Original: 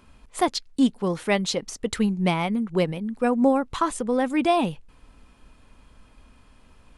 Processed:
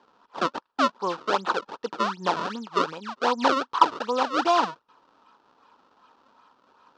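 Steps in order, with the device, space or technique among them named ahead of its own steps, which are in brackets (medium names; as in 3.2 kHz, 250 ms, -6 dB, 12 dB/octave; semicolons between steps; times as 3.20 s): circuit-bent sampling toy (decimation with a swept rate 31×, swing 160% 2.6 Hz; cabinet simulation 430–5200 Hz, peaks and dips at 640 Hz -4 dB, 940 Hz +10 dB, 1.3 kHz +8 dB, 2.1 kHz -10 dB)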